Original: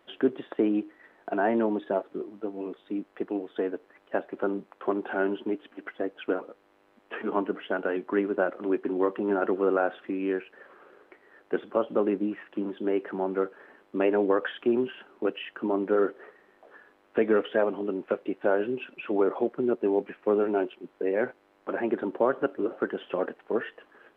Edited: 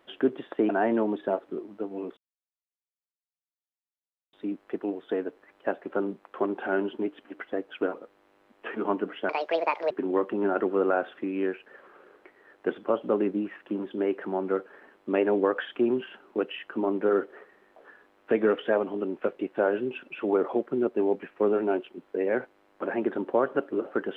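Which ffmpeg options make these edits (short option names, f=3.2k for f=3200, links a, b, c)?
-filter_complex "[0:a]asplit=5[a][b][c][d][e];[a]atrim=end=0.692[f];[b]atrim=start=1.318:end=2.8,asetpts=PTS-STARTPTS,afade=t=out:st=1.478:d=0.004:c=hsin,apad=pad_dur=2.16[g];[c]atrim=start=2.8:end=7.764,asetpts=PTS-STARTPTS,afade=t=in:d=0.004:c=hsin[h];[d]atrim=start=7.76:end=8.77,asetpts=PTS-STARTPTS,asetrate=72324,aresample=44100,atrim=end_sample=27159,asetpts=PTS-STARTPTS[i];[e]atrim=start=8.766[j];[g][h]concat=n=2:v=0:a=1[k];[f][k]acrossfade=d=0.004:c1=hsin:c2=hsin[l];[l][i]acrossfade=d=0.004:c1=hsin:c2=hsin[m];[m][j]acrossfade=d=0.004:c1=hsin:c2=hsin"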